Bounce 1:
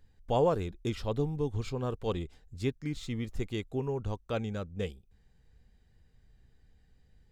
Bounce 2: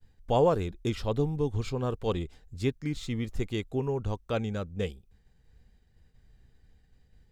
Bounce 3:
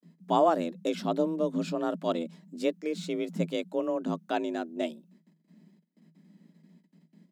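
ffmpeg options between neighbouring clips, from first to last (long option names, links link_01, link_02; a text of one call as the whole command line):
ffmpeg -i in.wav -af "agate=range=-33dB:threshold=-59dB:ratio=3:detection=peak,volume=3dB" out.wav
ffmpeg -i in.wav -af "agate=range=-19dB:threshold=-59dB:ratio=16:detection=peak,afreqshift=160" out.wav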